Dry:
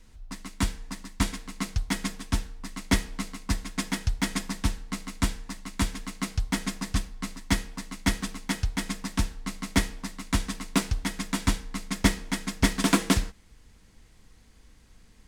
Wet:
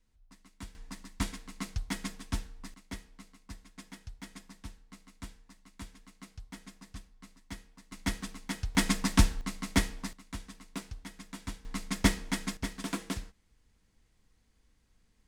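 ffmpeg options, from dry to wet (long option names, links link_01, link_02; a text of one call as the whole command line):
ffmpeg -i in.wav -af "asetnsamples=nb_out_samples=441:pad=0,asendcmd='0.75 volume volume -7dB;2.74 volume volume -19dB;7.92 volume volume -7.5dB;8.75 volume volume 4dB;9.41 volume volume -3dB;10.13 volume volume -15.5dB;11.65 volume volume -3dB;12.57 volume volume -13.5dB',volume=-19dB" out.wav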